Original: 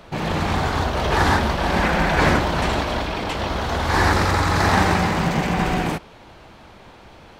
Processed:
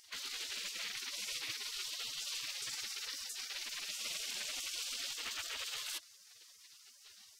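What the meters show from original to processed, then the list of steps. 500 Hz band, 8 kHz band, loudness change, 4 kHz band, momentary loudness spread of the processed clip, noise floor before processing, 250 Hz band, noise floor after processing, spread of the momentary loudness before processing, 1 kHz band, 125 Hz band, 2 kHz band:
-37.5 dB, -5.0 dB, -19.5 dB, -9.5 dB, 18 LU, -45 dBFS, under -40 dB, -61 dBFS, 7 LU, -35.5 dB, under -40 dB, -22.5 dB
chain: spectral gate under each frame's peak -25 dB weak; reverse; compressor 5:1, threshold -45 dBFS, peak gain reduction 14 dB; reverse; gain +5 dB

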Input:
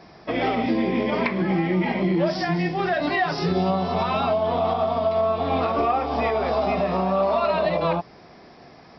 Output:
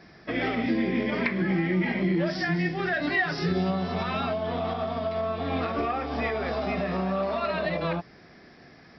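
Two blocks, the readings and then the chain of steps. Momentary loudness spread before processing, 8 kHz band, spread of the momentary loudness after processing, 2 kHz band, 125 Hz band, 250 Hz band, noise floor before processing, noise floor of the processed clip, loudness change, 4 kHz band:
2 LU, n/a, 4 LU, +0.5 dB, -2.5 dB, -3.0 dB, -48 dBFS, -52 dBFS, -4.5 dB, -3.5 dB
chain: EQ curve 280 Hz 0 dB, 980 Hz -8 dB, 1700 Hz +5 dB, 2600 Hz -1 dB; gain -2.5 dB

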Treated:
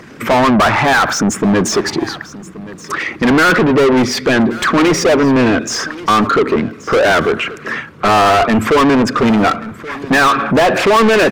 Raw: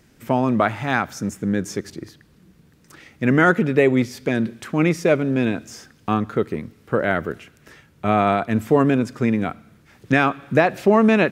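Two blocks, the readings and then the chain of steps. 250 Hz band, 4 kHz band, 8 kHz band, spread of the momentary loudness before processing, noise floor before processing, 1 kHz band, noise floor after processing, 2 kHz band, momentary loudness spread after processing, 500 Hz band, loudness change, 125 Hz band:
+6.5 dB, +17.0 dB, +17.0 dB, 13 LU, -55 dBFS, +10.5 dB, -35 dBFS, +9.5 dB, 13 LU, +7.5 dB, +7.5 dB, +3.5 dB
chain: formant sharpening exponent 1.5; bell 1100 Hz +8.5 dB 0.39 oct; overdrive pedal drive 37 dB, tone 3200 Hz, clips at -1 dBFS; echo 1.128 s -18 dB; gain -2.5 dB

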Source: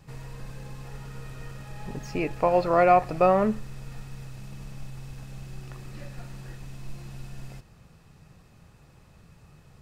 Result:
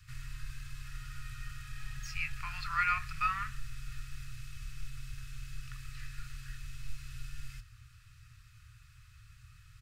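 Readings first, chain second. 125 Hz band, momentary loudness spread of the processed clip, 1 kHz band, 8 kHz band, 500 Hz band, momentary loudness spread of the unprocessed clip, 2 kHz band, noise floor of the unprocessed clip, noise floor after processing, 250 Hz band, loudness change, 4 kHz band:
-8.5 dB, 25 LU, -12.0 dB, n/a, under -40 dB, 22 LU, 0.0 dB, -55 dBFS, -58 dBFS, -25.0 dB, -16.5 dB, 0.0 dB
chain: Chebyshev band-stop 120–1300 Hz, order 4; doubler 26 ms -13 dB

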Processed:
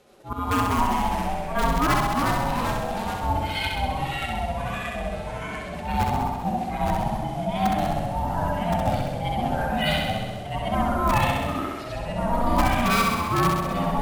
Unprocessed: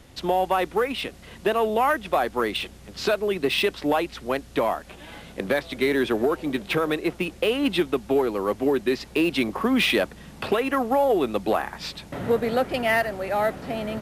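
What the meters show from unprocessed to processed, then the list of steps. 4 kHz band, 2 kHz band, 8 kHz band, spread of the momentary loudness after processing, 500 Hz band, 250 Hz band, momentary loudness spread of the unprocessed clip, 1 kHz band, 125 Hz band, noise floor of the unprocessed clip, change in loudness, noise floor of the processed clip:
-2.0 dB, -2.0 dB, +4.0 dB, 9 LU, -6.5 dB, -1.0 dB, 9 LU, +4.0 dB, +11.0 dB, -46 dBFS, -0.5 dB, -33 dBFS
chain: median-filter separation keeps harmonic; gate -44 dBFS, range -6 dB; low shelf 110 Hz -2.5 dB; auto swell 0.196 s; in parallel at -4.5 dB: wrapped overs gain 17 dB; on the sum: ring modulator 480 Hz; echoes that change speed 0.132 s, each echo -2 st, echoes 3; on a send: flutter echo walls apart 11.2 m, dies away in 1.2 s

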